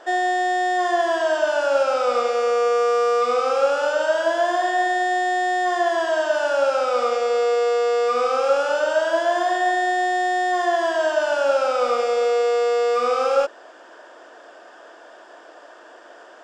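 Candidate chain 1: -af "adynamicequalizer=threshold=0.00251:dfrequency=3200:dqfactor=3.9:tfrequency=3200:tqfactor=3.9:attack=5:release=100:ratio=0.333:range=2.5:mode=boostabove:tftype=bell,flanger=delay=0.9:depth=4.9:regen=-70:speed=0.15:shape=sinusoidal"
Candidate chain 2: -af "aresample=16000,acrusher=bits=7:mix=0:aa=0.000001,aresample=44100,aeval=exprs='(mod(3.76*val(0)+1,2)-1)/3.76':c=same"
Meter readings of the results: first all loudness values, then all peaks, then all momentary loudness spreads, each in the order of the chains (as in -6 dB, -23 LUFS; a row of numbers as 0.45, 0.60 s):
-24.5, -20.0 LUFS; -12.0, -11.5 dBFS; 3, 2 LU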